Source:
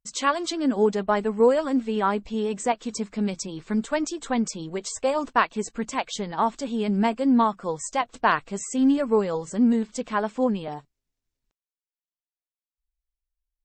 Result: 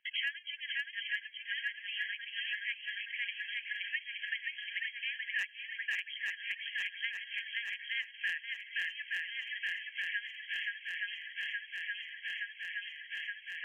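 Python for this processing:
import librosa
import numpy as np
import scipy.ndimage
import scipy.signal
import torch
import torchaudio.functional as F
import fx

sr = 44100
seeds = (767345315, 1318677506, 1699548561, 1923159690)

y = fx.brickwall_bandpass(x, sr, low_hz=1600.0, high_hz=3300.0)
y = np.clip(y, -10.0 ** (-20.0 / 20.0), 10.0 ** (-20.0 / 20.0))
y = fx.echo_swing(y, sr, ms=871, ratio=1.5, feedback_pct=55, wet_db=-4.5)
y = fx.band_squash(y, sr, depth_pct=100)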